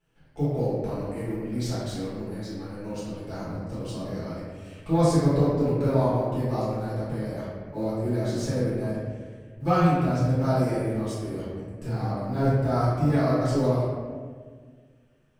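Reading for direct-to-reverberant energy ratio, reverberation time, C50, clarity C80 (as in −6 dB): −12.0 dB, 1.7 s, −3.0 dB, 0.0 dB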